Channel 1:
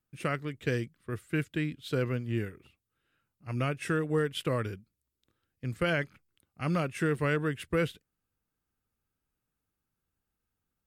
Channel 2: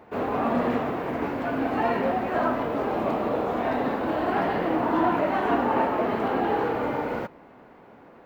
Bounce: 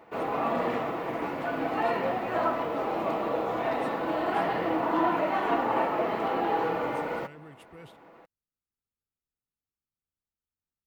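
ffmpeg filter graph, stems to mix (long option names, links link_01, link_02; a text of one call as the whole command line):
ffmpeg -i stem1.wav -i stem2.wav -filter_complex "[0:a]alimiter=level_in=3dB:limit=-24dB:level=0:latency=1:release=21,volume=-3dB,volume=-13.5dB[link_01];[1:a]lowshelf=frequency=340:gain=-8.5,aecho=1:1:6.1:0.32,volume=-1dB[link_02];[link_01][link_02]amix=inputs=2:normalize=0,bandreject=frequency=1600:width=13" out.wav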